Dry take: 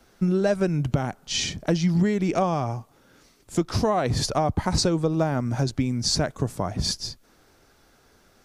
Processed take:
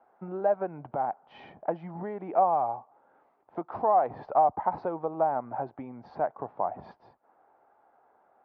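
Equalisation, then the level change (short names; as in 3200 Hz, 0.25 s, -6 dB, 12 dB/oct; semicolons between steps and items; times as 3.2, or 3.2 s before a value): ladder band-pass 910 Hz, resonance 60%; air absorption 310 m; tilt -4.5 dB/oct; +8.0 dB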